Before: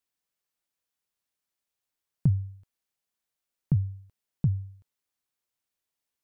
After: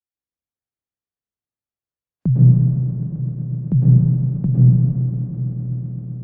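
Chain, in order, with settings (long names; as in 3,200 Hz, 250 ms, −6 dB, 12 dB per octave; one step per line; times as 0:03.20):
noise reduction from a noise print of the clip's start 21 dB
frequency shifter +30 Hz
in parallel at 0 dB: downward compressor, threshold −35 dBFS, peak gain reduction 15.5 dB
on the sum: brickwall limiter −19.5 dBFS, peak gain reduction 8 dB
spectral tilt −3 dB per octave
echo that builds up and dies away 129 ms, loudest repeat 5, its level −16 dB
dense smooth reverb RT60 2.6 s, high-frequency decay 0.35×, pre-delay 95 ms, DRR −5.5 dB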